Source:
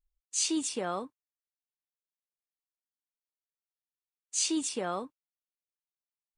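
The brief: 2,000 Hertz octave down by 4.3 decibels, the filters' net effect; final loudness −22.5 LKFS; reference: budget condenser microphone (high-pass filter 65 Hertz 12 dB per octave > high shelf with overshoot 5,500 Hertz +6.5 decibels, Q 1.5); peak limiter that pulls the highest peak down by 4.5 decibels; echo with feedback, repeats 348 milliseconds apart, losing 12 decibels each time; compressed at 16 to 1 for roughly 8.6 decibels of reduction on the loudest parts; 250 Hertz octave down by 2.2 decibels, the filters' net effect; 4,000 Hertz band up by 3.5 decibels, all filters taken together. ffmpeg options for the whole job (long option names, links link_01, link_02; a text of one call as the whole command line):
ffmpeg -i in.wav -af "equalizer=frequency=250:width_type=o:gain=-3,equalizer=frequency=2000:width_type=o:gain=-8,equalizer=frequency=4000:width_type=o:gain=6.5,acompressor=threshold=-31dB:ratio=16,alimiter=level_in=2.5dB:limit=-24dB:level=0:latency=1,volume=-2.5dB,highpass=65,highshelf=frequency=5500:width_type=q:width=1.5:gain=6.5,aecho=1:1:348|696|1044:0.251|0.0628|0.0157,volume=10.5dB" out.wav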